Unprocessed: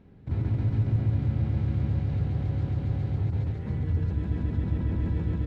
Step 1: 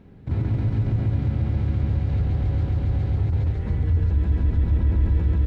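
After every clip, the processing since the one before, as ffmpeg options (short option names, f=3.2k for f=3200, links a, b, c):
-filter_complex "[0:a]asubboost=boost=8:cutoff=52,asplit=2[a][b];[b]alimiter=limit=-22dB:level=0:latency=1,volume=3dB[c];[a][c]amix=inputs=2:normalize=0,volume=-2dB"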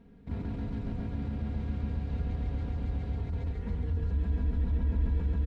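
-af "aecho=1:1:4.3:0.75,volume=-9dB"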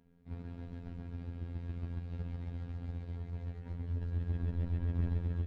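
-af "aeval=exprs='0.119*(cos(1*acos(clip(val(0)/0.119,-1,1)))-cos(1*PI/2))+0.0266*(cos(3*acos(clip(val(0)/0.119,-1,1)))-cos(3*PI/2))':c=same,afftfilt=real='hypot(re,im)*cos(PI*b)':imag='0':win_size=2048:overlap=0.75,volume=2dB"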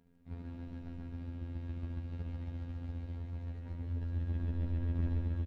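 -af "aecho=1:1:72.89|154.5:0.355|0.398,volume=-1dB"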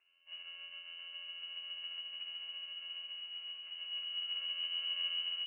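-filter_complex "[0:a]acrossover=split=140|580|710[a][b][c][d];[b]acrusher=samples=41:mix=1:aa=0.000001[e];[a][e][c][d]amix=inputs=4:normalize=0,lowpass=f=2.6k:t=q:w=0.5098,lowpass=f=2.6k:t=q:w=0.6013,lowpass=f=2.6k:t=q:w=0.9,lowpass=f=2.6k:t=q:w=2.563,afreqshift=-3000,volume=-5dB"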